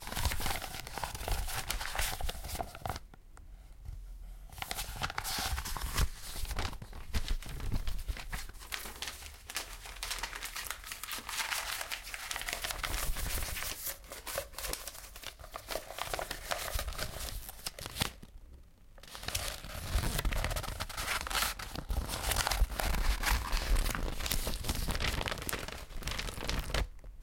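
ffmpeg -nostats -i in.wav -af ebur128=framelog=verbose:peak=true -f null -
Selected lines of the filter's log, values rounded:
Integrated loudness:
  I:         -37.1 LUFS
  Threshold: -47.5 LUFS
Loudness range:
  LRA:         6.5 LU
  Threshold: -57.5 LUFS
  LRA low:   -40.6 LUFS
  LRA high:  -34.1 LUFS
True peak:
  Peak:       -9.5 dBFS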